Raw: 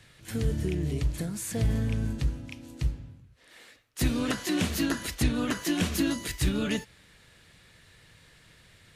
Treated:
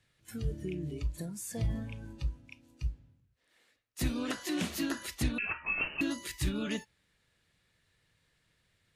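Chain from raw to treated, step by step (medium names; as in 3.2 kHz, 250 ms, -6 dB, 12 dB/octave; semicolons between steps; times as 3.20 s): spectral noise reduction 11 dB; 5.38–6.01 s: frequency inversion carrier 2.9 kHz; trim -5.5 dB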